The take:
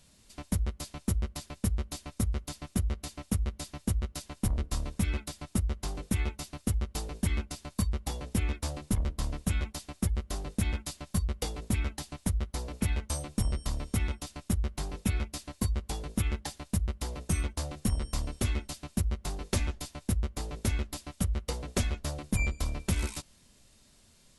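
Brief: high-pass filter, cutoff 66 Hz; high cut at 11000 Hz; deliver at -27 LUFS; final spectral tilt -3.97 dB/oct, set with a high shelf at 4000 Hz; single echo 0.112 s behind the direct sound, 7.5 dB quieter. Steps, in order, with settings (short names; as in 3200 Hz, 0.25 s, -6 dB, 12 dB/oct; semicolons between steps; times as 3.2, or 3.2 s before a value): HPF 66 Hz; LPF 11000 Hz; high shelf 4000 Hz +7.5 dB; echo 0.112 s -7.5 dB; gain +6 dB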